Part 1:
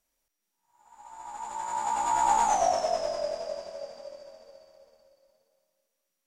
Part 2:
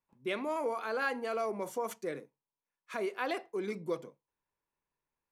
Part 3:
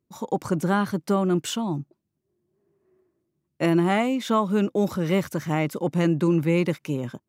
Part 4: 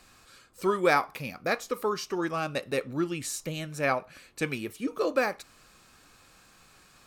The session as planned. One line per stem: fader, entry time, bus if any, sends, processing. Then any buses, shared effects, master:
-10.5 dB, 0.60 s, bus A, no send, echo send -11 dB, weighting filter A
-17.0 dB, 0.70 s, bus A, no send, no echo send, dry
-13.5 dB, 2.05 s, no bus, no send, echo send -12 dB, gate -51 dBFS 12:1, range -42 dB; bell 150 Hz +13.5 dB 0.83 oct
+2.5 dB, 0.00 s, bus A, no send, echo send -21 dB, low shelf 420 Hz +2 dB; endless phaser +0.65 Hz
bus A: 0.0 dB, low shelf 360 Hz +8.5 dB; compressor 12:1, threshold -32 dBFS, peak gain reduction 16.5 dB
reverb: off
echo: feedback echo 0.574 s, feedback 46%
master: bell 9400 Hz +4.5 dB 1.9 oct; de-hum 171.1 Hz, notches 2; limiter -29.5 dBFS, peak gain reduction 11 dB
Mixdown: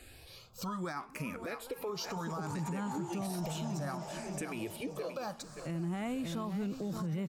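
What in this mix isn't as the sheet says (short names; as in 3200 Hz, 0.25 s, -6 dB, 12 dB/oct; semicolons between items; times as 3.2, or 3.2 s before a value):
stem 4: missing low shelf 420 Hz +2 dB; master: missing de-hum 171.1 Hz, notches 2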